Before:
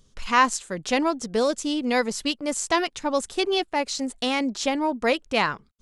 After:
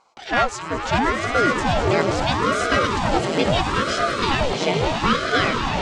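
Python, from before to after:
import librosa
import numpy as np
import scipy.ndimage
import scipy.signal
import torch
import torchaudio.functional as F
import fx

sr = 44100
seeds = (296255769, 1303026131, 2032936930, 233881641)

p1 = 10.0 ** (-19.5 / 20.0) * (np.abs((x / 10.0 ** (-19.5 / 20.0) + 3.0) % 4.0 - 2.0) - 1.0)
p2 = x + F.gain(torch.from_numpy(p1), -6.5).numpy()
p3 = scipy.signal.sosfilt(scipy.signal.butter(2, 4700.0, 'lowpass', fs=sr, output='sos'), p2)
p4 = fx.notch_comb(p3, sr, f0_hz=920.0)
p5 = p4 + fx.echo_swell(p4, sr, ms=105, loudest=8, wet_db=-11.0, dry=0)
p6 = fx.ring_lfo(p5, sr, carrier_hz=520.0, swing_pct=85, hz=0.75)
y = F.gain(torch.from_numpy(p6), 3.5).numpy()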